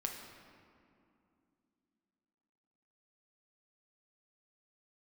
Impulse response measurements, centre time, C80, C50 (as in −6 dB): 59 ms, 5.5 dB, 4.0 dB